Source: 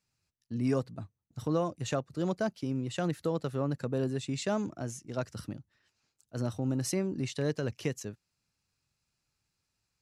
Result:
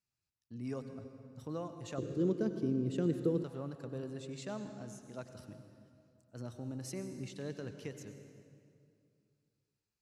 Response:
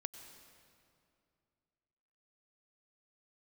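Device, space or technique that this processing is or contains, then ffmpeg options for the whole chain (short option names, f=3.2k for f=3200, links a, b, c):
stairwell: -filter_complex "[1:a]atrim=start_sample=2205[a];[0:a][a]afir=irnorm=-1:irlink=0,asettb=1/sr,asplit=3[b][c][d];[b]atrim=end=1.984[e];[c]atrim=start=1.98:end=3.44,asetpts=PTS-STARTPTS,afade=t=in:d=0.004:c=qsin,afade=t=out:st=1.456:d=0.004:c=qsin,lowshelf=f=540:t=q:w=3:g=8.5[f];[d]atrim=start=3.436[g];[e][f]acrossfade=d=0.004:c1=hsin:c2=qsin[h];[h][g]acrossfade=d=0.004:c1=qsin:c2=hsin,volume=-8dB"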